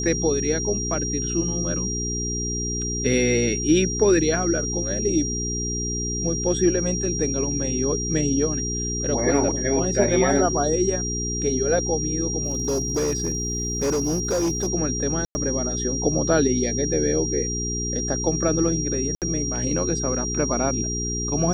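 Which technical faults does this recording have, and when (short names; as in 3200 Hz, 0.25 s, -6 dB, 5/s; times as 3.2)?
hum 60 Hz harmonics 7 -29 dBFS
tone 5700 Hz -27 dBFS
12.43–14.68 clipped -19 dBFS
15.25–15.35 gap 0.1 s
19.15–19.22 gap 68 ms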